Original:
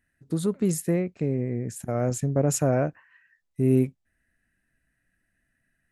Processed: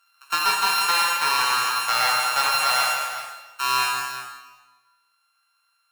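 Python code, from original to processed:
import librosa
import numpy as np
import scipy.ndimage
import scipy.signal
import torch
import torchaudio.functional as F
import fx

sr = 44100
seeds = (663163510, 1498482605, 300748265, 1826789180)

y = np.r_[np.sort(x[:len(x) // 32 * 32].reshape(-1, 32), axis=1).ravel(), x[len(x) // 32 * 32:]]
y = scipy.signal.sosfilt(scipy.signal.butter(4, 940.0, 'highpass', fs=sr, output='sos'), y)
y = fx.rider(y, sr, range_db=4, speed_s=0.5)
y = fx.fold_sine(y, sr, drive_db=4, ceiling_db=-11.0)
y = fx.echo_multitap(y, sr, ms=(165, 371), db=(-6.5, -11.5))
y = fx.rev_plate(y, sr, seeds[0], rt60_s=1.2, hf_ratio=0.85, predelay_ms=0, drr_db=-1.0)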